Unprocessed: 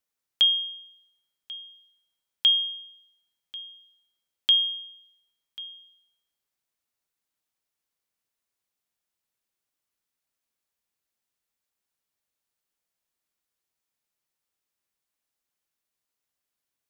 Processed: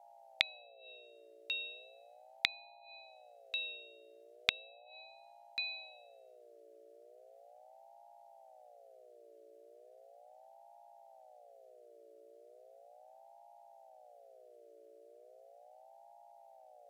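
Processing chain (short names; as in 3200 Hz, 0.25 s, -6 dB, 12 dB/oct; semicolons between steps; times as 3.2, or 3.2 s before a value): buzz 60 Hz, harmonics 3, -61 dBFS -8 dB/oct; treble ducked by the level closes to 530 Hz, closed at -28 dBFS; ring modulator with a swept carrier 630 Hz, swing 20%, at 0.37 Hz; gain +4.5 dB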